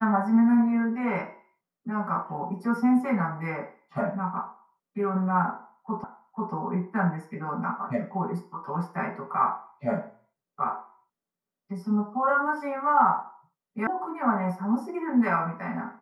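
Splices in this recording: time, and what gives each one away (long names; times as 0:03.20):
0:06.04: the same again, the last 0.49 s
0:13.87: cut off before it has died away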